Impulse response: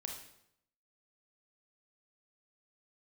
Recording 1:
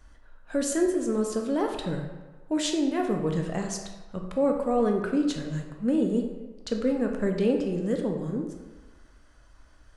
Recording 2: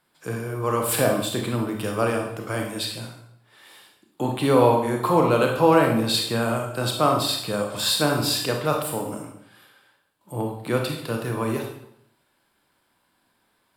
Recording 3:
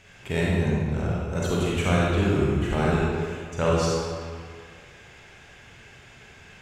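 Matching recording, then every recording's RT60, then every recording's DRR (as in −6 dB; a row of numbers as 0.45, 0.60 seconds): 2; 1.3, 0.75, 2.0 seconds; 2.0, 1.5, −5.5 decibels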